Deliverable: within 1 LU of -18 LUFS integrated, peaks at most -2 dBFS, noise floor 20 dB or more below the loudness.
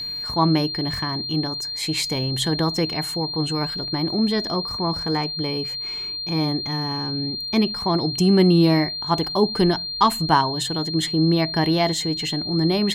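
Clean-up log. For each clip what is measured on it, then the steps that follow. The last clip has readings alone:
steady tone 4200 Hz; tone level -27 dBFS; loudness -21.5 LUFS; peak -3.5 dBFS; loudness target -18.0 LUFS
-> notch 4200 Hz, Q 30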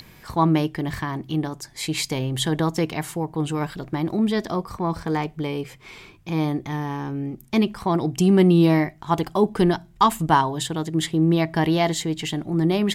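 steady tone none; loudness -23.0 LUFS; peak -3.5 dBFS; loudness target -18.0 LUFS
-> gain +5 dB; limiter -2 dBFS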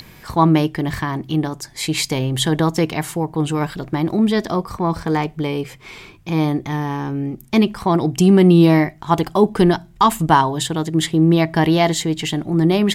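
loudness -18.0 LUFS; peak -2.0 dBFS; noise floor -45 dBFS

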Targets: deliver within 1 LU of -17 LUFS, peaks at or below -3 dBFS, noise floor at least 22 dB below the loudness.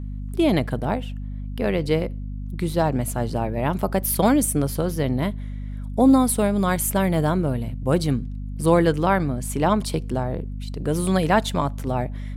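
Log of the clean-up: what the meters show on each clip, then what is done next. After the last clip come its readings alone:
hum 50 Hz; harmonics up to 250 Hz; hum level -28 dBFS; loudness -22.5 LUFS; peak -5.5 dBFS; loudness target -17.0 LUFS
-> notches 50/100/150/200/250 Hz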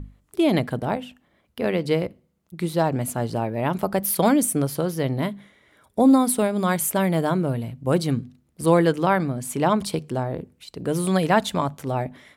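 hum none; loudness -23.0 LUFS; peak -5.5 dBFS; loudness target -17.0 LUFS
-> gain +6 dB; limiter -3 dBFS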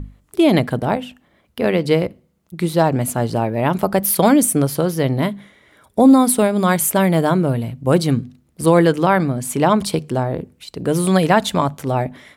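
loudness -17.5 LUFS; peak -3.0 dBFS; noise floor -60 dBFS

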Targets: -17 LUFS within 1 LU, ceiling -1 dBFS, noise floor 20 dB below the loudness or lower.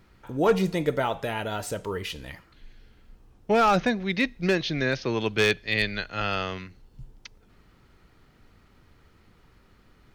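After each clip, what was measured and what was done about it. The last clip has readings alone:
clipped 0.2%; flat tops at -13.5 dBFS; loudness -26.0 LUFS; peak -13.5 dBFS; loudness target -17.0 LUFS
-> clip repair -13.5 dBFS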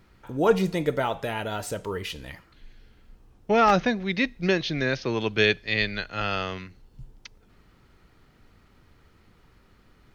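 clipped 0.0%; loudness -25.5 LUFS; peak -4.5 dBFS; loudness target -17.0 LUFS
-> gain +8.5 dB; limiter -1 dBFS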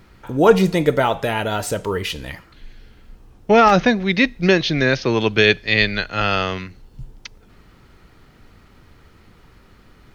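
loudness -17.5 LUFS; peak -1.0 dBFS; noise floor -51 dBFS

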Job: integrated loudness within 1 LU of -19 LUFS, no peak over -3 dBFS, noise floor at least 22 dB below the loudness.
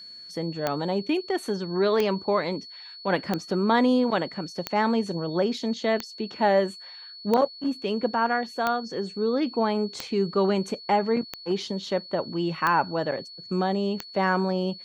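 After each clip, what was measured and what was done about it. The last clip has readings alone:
clicks 11; steady tone 4400 Hz; tone level -41 dBFS; loudness -26.0 LUFS; peak -7.5 dBFS; loudness target -19.0 LUFS
-> de-click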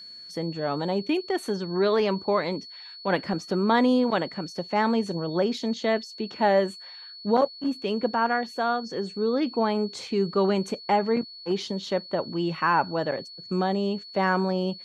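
clicks 0; steady tone 4400 Hz; tone level -41 dBFS
-> notch 4400 Hz, Q 30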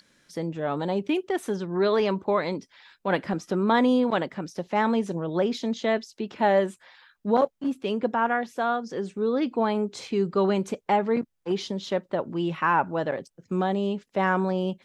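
steady tone none; loudness -26.5 LUFS; peak -9.0 dBFS; loudness target -19.0 LUFS
-> gain +7.5 dB; limiter -3 dBFS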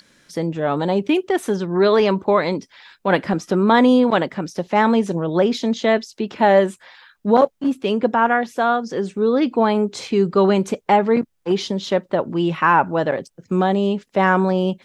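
loudness -19.0 LUFS; peak -3.0 dBFS; noise floor -66 dBFS

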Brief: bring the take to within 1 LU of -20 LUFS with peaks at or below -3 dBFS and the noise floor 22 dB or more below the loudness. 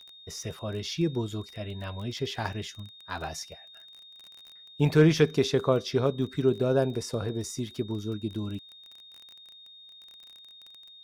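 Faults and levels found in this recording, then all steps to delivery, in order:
ticks 24/s; steady tone 3700 Hz; tone level -48 dBFS; loudness -29.0 LUFS; peak -8.0 dBFS; loudness target -20.0 LUFS
-> de-click; notch 3700 Hz, Q 30; gain +9 dB; limiter -3 dBFS

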